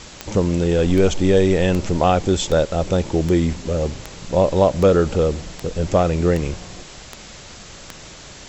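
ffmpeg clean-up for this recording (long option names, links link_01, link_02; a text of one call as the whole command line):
ffmpeg -i in.wav -af "adeclick=threshold=4,afwtdn=0.014" out.wav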